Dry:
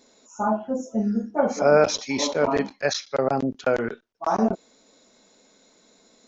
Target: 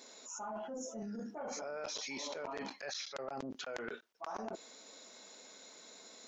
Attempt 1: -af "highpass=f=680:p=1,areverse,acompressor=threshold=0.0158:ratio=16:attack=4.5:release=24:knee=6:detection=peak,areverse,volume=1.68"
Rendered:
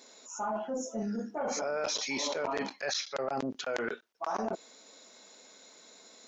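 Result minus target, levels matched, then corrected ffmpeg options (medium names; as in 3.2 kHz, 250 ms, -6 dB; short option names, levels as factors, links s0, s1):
compression: peak gain reduction -9.5 dB
-af "highpass=f=680:p=1,areverse,acompressor=threshold=0.00501:ratio=16:attack=4.5:release=24:knee=6:detection=peak,areverse,volume=1.68"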